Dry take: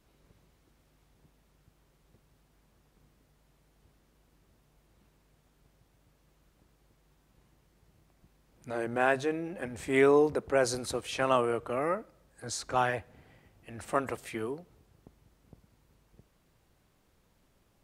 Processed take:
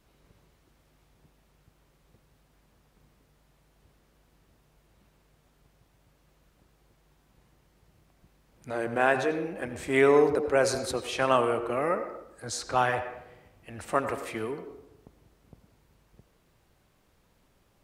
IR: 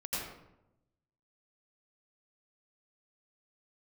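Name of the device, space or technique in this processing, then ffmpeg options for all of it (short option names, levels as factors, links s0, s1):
filtered reverb send: -filter_complex "[0:a]asplit=2[s0][s1];[s1]highpass=f=270:w=0.5412,highpass=f=270:w=1.3066,lowpass=5300[s2];[1:a]atrim=start_sample=2205[s3];[s2][s3]afir=irnorm=-1:irlink=0,volume=0.266[s4];[s0][s4]amix=inputs=2:normalize=0,volume=1.26"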